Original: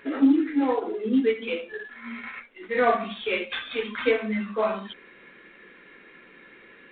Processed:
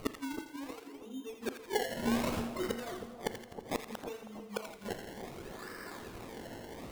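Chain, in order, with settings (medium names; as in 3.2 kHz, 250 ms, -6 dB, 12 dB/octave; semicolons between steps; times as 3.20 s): high-pass 190 Hz 24 dB/octave; bass shelf 350 Hz +5.5 dB; decimation with a swept rate 25×, swing 100% 0.65 Hz; inverted gate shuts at -24 dBFS, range -28 dB; two-band feedback delay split 1.1 kHz, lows 319 ms, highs 84 ms, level -8.5 dB; on a send at -14.5 dB: reverberation RT60 0.60 s, pre-delay 38 ms; on the sum: trim +3 dB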